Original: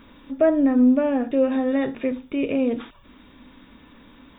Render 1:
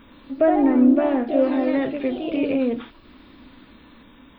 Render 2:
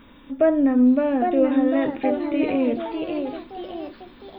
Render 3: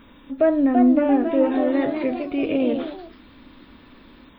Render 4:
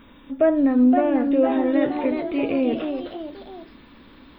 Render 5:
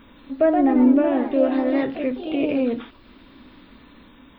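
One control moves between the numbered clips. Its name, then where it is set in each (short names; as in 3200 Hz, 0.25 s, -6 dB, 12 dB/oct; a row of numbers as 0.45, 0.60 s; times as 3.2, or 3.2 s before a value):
echoes that change speed, time: 0.115, 0.855, 0.382, 0.565, 0.17 s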